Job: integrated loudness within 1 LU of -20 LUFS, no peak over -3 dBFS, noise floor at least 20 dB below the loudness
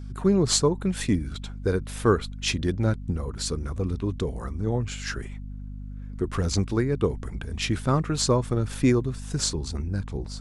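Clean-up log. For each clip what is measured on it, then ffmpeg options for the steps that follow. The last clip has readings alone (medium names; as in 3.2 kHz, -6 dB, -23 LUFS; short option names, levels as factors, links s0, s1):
hum 50 Hz; highest harmonic 250 Hz; hum level -33 dBFS; loudness -26.5 LUFS; peak level -8.0 dBFS; loudness target -20.0 LUFS
-> -af "bandreject=f=50:t=h:w=6,bandreject=f=100:t=h:w=6,bandreject=f=150:t=h:w=6,bandreject=f=200:t=h:w=6,bandreject=f=250:t=h:w=6"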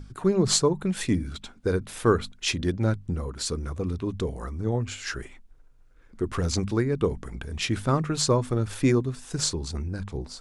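hum not found; loudness -27.0 LUFS; peak level -9.0 dBFS; loudness target -20.0 LUFS
-> -af "volume=2.24,alimiter=limit=0.708:level=0:latency=1"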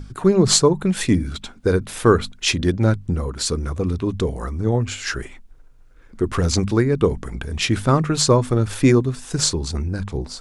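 loudness -20.0 LUFS; peak level -3.0 dBFS; noise floor -47 dBFS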